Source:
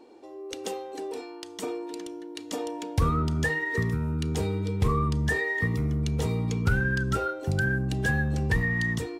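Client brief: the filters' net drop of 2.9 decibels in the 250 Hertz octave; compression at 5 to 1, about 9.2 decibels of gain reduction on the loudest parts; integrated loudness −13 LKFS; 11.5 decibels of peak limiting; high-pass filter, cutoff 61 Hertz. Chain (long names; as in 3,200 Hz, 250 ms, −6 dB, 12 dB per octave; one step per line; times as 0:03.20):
high-pass filter 61 Hz
parametric band 250 Hz −4.5 dB
downward compressor 5 to 1, threshold −31 dBFS
level +24.5 dB
brickwall limiter −5 dBFS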